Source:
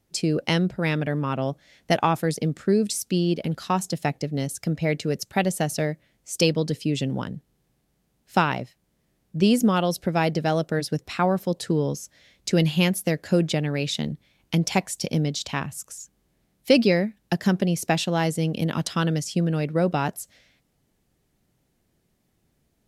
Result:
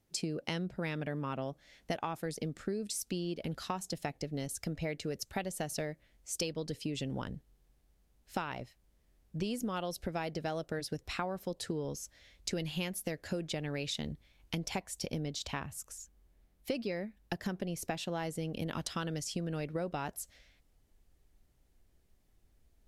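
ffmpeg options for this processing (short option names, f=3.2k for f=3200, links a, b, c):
-filter_complex "[0:a]asettb=1/sr,asplit=3[a][b][c];[a]atrim=end=14.664[d];[b]atrim=start=14.66:end=18.67,asetpts=PTS-STARTPTS,afade=t=in:d=0.004:c=qsin,afade=t=out:st=4.006:d=0.004:c=qsin,equalizer=f=6.2k:w=0.43:g=-3.5[e];[c]atrim=start=18.666[f];[d][e]acrossfade=d=0.004:c1=hsin:c2=qsin[g];[g][f]acrossfade=d=0.004:c1=qsin:c2=hsin,asubboost=boost=8.5:cutoff=51,acompressor=threshold=-28dB:ratio=6,volume=-5dB"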